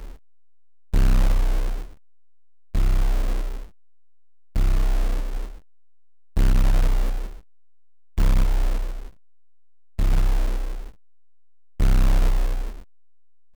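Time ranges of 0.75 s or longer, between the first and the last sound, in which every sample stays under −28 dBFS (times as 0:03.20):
0:01.82–0:02.75
0:03.63–0:04.56
0:05.47–0:06.37
0:07.28–0:08.18
0:09.06–0:09.99
0:10.87–0:11.80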